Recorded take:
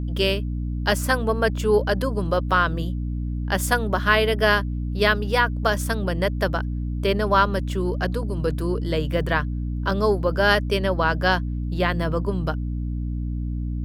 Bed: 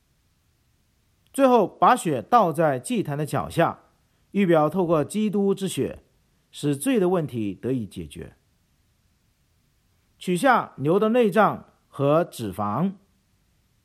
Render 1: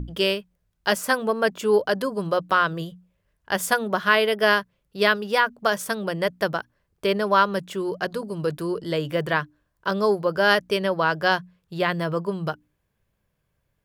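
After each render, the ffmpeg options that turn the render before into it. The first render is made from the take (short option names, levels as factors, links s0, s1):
-af "bandreject=f=60:t=h:w=6,bandreject=f=120:t=h:w=6,bandreject=f=180:t=h:w=6,bandreject=f=240:t=h:w=6,bandreject=f=300:t=h:w=6"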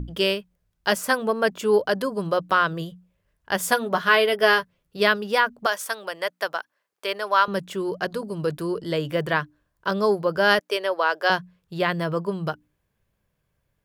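-filter_complex "[0:a]asettb=1/sr,asplit=3[s0][s1][s2];[s0]atrim=end=3.644[s3];[s1]atrim=start=3.64:end=5,asetpts=PTS-STARTPTS,afade=t=in:d=0.004:c=qsin,afade=t=out:st=1.356:d=0.004:c=qsin,asplit=2[s4][s5];[s5]adelay=12,volume=0.501[s6];[s4][s6]amix=inputs=2:normalize=0,atrim=end_sample=59976[s7];[s2]atrim=start=4.996[s8];[s3][s7]acrossfade=d=0.004:c1=hsin:c2=qsin[s9];[s9][s8]acrossfade=d=0.004:c1=qsin:c2=hsin,asettb=1/sr,asplit=3[s10][s11][s12];[s10]atrim=end=5.664[s13];[s11]atrim=start=5.66:end=7.48,asetpts=PTS-STARTPTS,afade=t=in:d=0.004:c=qsin,afade=t=out:st=1.816:d=0.004:c=qsin,highpass=650[s14];[s12]atrim=start=7.476[s15];[s13][s14]acrossfade=d=0.004:c1=hsin:c2=qsin[s16];[s16][s15]acrossfade=d=0.004:c1=qsin:c2=hsin,asettb=1/sr,asplit=3[s17][s18][s19];[s17]atrim=end=10.594[s20];[s18]atrim=start=10.59:end=11.3,asetpts=PTS-STARTPTS,afade=t=in:d=0.004:c=qsin,afade=t=out:st=0.706:d=0.004:c=qsin,highpass=f=390:w=0.5412,highpass=f=390:w=1.3066[s21];[s19]atrim=start=11.296[s22];[s20][s21]acrossfade=d=0.004:c1=hsin:c2=qsin[s23];[s23][s22]acrossfade=d=0.004:c1=qsin:c2=hsin"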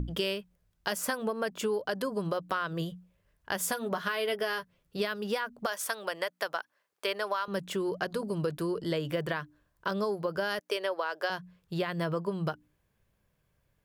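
-filter_complex "[0:a]acrossover=split=5600[s0][s1];[s0]alimiter=limit=0.2:level=0:latency=1:release=203[s2];[s2][s1]amix=inputs=2:normalize=0,acompressor=threshold=0.0398:ratio=6"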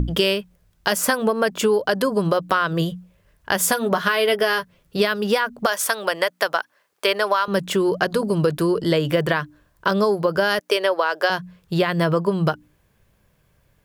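-af "volume=3.98,alimiter=limit=0.708:level=0:latency=1"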